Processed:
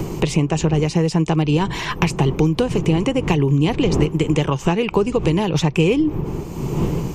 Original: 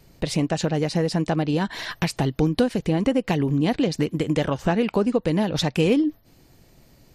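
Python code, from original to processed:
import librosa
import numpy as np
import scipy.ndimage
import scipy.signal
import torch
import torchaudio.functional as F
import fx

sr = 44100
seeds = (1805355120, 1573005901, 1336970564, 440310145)

y = fx.dmg_wind(x, sr, seeds[0], corner_hz=220.0, level_db=-32.0)
y = fx.ripple_eq(y, sr, per_octave=0.72, db=9)
y = fx.band_squash(y, sr, depth_pct=70)
y = y * librosa.db_to_amplitude(2.5)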